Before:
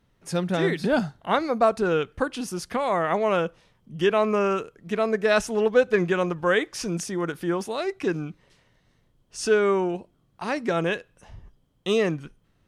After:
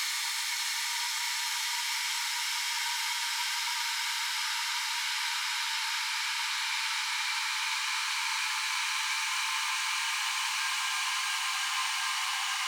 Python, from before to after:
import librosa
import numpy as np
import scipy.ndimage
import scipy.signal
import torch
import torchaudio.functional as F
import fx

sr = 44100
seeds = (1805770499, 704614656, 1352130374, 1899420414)

p1 = fx.brickwall_highpass(x, sr, low_hz=1300.0)
p2 = fx.band_shelf(p1, sr, hz=5500.0, db=12.5, octaves=1.7)
p3 = fx.echo_swell(p2, sr, ms=81, loudest=5, wet_db=-7.0)
p4 = fx.granulator(p3, sr, seeds[0], grain_ms=100.0, per_s=20.0, spray_ms=100.0, spread_st=12)
p5 = fx.paulstretch(p4, sr, seeds[1], factor=13.0, window_s=1.0, from_s=0.69)
p6 = np.sign(p5) * np.maximum(np.abs(p5) - 10.0 ** (-46.5 / 20.0), 0.0)
p7 = p5 + F.gain(torch.from_numpy(p6), -8.0).numpy()
y = F.gain(torch.from_numpy(p7), -6.5).numpy()